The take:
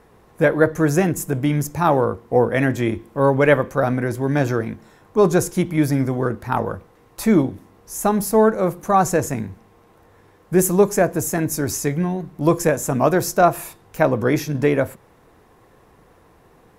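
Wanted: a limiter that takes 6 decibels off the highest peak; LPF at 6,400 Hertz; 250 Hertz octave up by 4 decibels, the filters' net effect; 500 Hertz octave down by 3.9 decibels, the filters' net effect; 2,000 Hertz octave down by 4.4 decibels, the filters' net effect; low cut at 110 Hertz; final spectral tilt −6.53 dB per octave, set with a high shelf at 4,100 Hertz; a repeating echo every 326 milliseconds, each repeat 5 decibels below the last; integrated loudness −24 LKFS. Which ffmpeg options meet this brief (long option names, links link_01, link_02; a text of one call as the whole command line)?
ffmpeg -i in.wav -af "highpass=110,lowpass=6400,equalizer=frequency=250:width_type=o:gain=8,equalizer=frequency=500:width_type=o:gain=-7.5,equalizer=frequency=2000:width_type=o:gain=-4.5,highshelf=frequency=4100:gain=-4.5,alimiter=limit=-9dB:level=0:latency=1,aecho=1:1:326|652|978|1304|1630|1956|2282:0.562|0.315|0.176|0.0988|0.0553|0.031|0.0173,volume=-4dB" out.wav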